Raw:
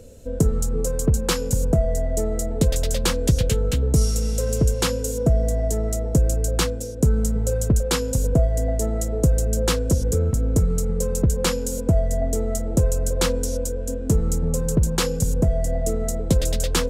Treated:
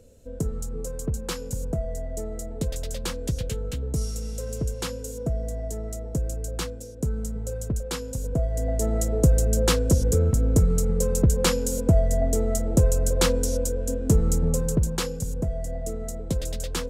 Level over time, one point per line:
0:08.22 −9 dB
0:08.95 0 dB
0:14.47 0 dB
0:15.22 −8 dB

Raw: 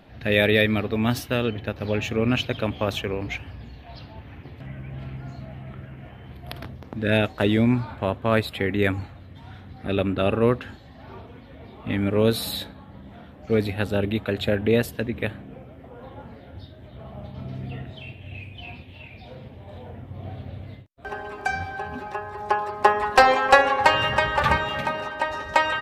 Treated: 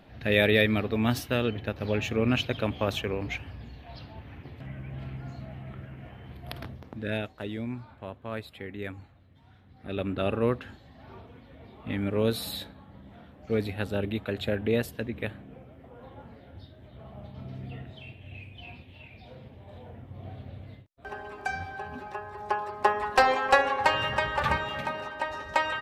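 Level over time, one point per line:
0:06.72 −3 dB
0:07.39 −15 dB
0:09.62 −15 dB
0:10.12 −6 dB

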